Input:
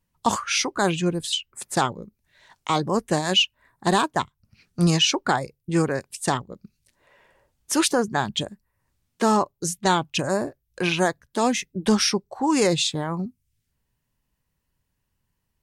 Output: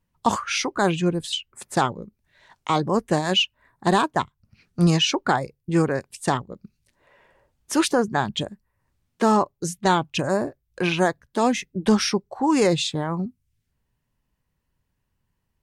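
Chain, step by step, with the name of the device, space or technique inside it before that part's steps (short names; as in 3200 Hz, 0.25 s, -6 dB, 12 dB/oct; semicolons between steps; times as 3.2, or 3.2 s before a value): behind a face mask (high shelf 3500 Hz -7 dB); gain +1.5 dB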